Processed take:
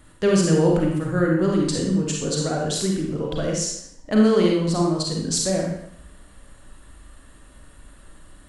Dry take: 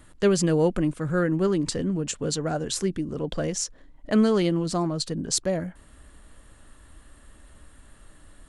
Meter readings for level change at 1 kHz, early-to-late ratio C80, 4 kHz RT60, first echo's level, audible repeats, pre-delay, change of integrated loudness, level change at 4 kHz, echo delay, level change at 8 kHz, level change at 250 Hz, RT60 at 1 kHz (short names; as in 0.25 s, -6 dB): +3.5 dB, 4.5 dB, 0.65 s, none, none, 34 ms, +4.0 dB, +4.0 dB, none, +3.5 dB, +4.0 dB, 0.75 s